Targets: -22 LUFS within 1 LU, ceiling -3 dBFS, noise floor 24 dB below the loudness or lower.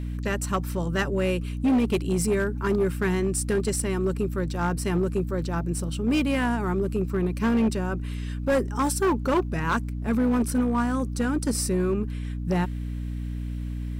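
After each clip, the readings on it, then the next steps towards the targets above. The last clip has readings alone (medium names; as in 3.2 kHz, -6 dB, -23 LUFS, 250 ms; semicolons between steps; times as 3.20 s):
clipped samples 2.1%; clipping level -17.5 dBFS; hum 60 Hz; highest harmonic 300 Hz; hum level -29 dBFS; loudness -26.0 LUFS; peak level -17.5 dBFS; loudness target -22.0 LUFS
-> clip repair -17.5 dBFS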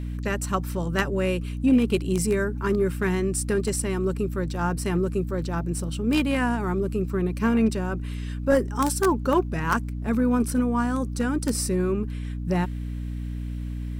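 clipped samples 0.0%; hum 60 Hz; highest harmonic 300 Hz; hum level -28 dBFS
-> hum notches 60/120/180/240/300 Hz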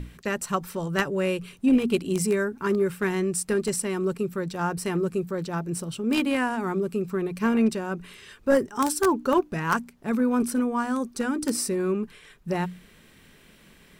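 hum not found; loudness -26.0 LUFS; peak level -8.5 dBFS; loudness target -22.0 LUFS
-> trim +4 dB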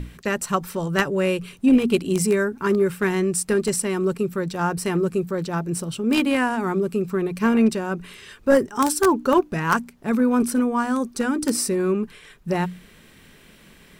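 loudness -22.0 LUFS; peak level -4.0 dBFS; noise floor -51 dBFS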